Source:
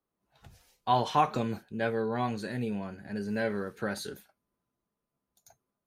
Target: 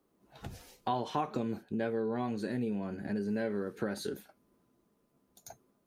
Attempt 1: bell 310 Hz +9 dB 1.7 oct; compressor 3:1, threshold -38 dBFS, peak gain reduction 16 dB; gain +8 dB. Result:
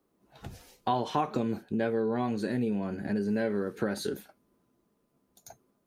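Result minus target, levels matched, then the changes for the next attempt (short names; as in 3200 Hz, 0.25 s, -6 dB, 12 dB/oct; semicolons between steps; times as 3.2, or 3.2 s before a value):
compressor: peak gain reduction -4.5 dB
change: compressor 3:1, threshold -44.5 dBFS, peak gain reduction 20.5 dB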